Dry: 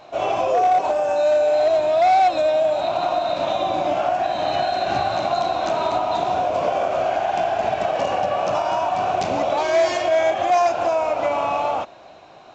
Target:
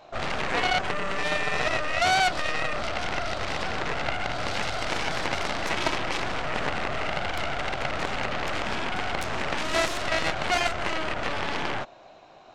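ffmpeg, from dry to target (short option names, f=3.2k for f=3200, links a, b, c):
-filter_complex "[0:a]asettb=1/sr,asplit=3[a][b][c];[a]atrim=end=4.554[d];[b]atrim=start=4.55:end=6.67,asetpts=PTS-STARTPTS,afade=t=in:d=0.004:c=qsin,afade=t=out:st=2.116:d=0.004:c=qsin,aecho=1:1:6.2:0.58,atrim=end_sample=93492[e];[c]atrim=start=6.666[f];[d][e]acrossfade=d=0.004:c1=hsin:c2=qsin[g];[g][f]acrossfade=d=0.004:c1=qsin:c2=hsin,aeval=exprs='0.398*(cos(1*acos(clip(val(0)/0.398,-1,1)))-cos(1*PI/2))+0.1*(cos(2*acos(clip(val(0)/0.398,-1,1)))-cos(2*PI/2))+0.158*(cos(3*acos(clip(val(0)/0.398,-1,1)))-cos(3*PI/2))+0.0316*(cos(7*acos(clip(val(0)/0.398,-1,1)))-cos(7*PI/2))+0.0562*(cos(8*acos(clip(val(0)/0.398,-1,1)))-cos(8*PI/2))':c=same,volume=-3dB"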